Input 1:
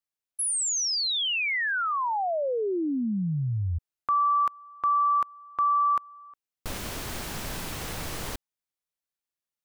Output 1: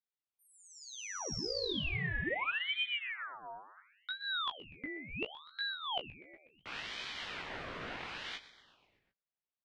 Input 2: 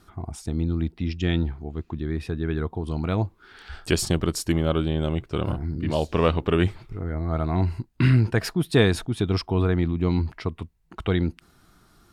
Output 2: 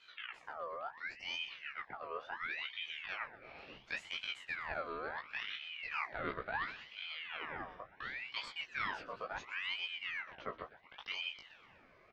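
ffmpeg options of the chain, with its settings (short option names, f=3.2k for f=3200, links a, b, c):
-filter_complex "[0:a]aemphasis=mode=reproduction:type=75kf,areverse,acompressor=threshold=-32dB:ratio=6:attack=15:release=500:knee=1:detection=peak,areverse,flanger=delay=17.5:depth=2.9:speed=0.31,highpass=250,lowpass=2.9k,asplit=2[a][b];[b]adelay=15,volume=-7dB[c];[a][c]amix=inputs=2:normalize=0,asplit=2[d][e];[e]asplit=6[f][g][h][i][j][k];[f]adelay=123,afreqshift=77,volume=-16dB[l];[g]adelay=246,afreqshift=154,volume=-20.3dB[m];[h]adelay=369,afreqshift=231,volume=-24.6dB[n];[i]adelay=492,afreqshift=308,volume=-28.9dB[o];[j]adelay=615,afreqshift=385,volume=-33.2dB[p];[k]adelay=738,afreqshift=462,volume=-37.5dB[q];[l][m][n][o][p][q]amix=inputs=6:normalize=0[r];[d][r]amix=inputs=2:normalize=0,aeval=exprs='val(0)*sin(2*PI*1800*n/s+1800*0.55/0.71*sin(2*PI*0.71*n/s))':c=same,volume=3dB"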